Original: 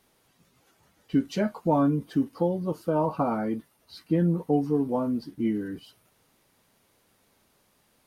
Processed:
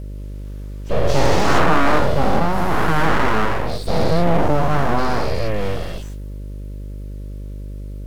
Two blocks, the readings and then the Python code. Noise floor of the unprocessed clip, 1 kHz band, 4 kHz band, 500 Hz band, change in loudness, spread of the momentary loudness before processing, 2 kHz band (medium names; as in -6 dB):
-67 dBFS, +13.5 dB, +18.5 dB, +9.0 dB, +8.0 dB, 7 LU, +22.0 dB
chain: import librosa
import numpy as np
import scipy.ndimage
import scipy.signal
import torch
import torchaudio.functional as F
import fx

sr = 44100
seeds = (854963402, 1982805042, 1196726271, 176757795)

y = fx.spec_dilate(x, sr, span_ms=480)
y = np.abs(y)
y = fx.dmg_buzz(y, sr, base_hz=50.0, harmonics=12, level_db=-35.0, tilt_db=-8, odd_only=False)
y = F.gain(torch.from_numpy(y), 5.0).numpy()